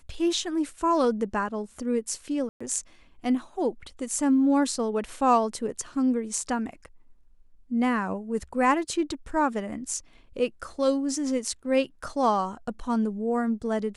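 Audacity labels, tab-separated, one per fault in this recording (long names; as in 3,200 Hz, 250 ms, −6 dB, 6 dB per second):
2.490000	2.600000	drop-out 115 ms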